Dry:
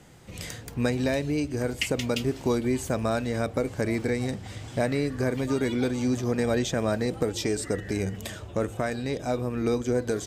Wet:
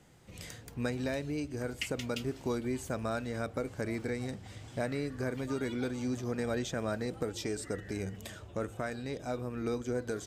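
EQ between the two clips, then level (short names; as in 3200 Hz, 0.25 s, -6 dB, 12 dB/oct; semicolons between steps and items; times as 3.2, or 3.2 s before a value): dynamic EQ 1400 Hz, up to +5 dB, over -49 dBFS, Q 4.3; -8.5 dB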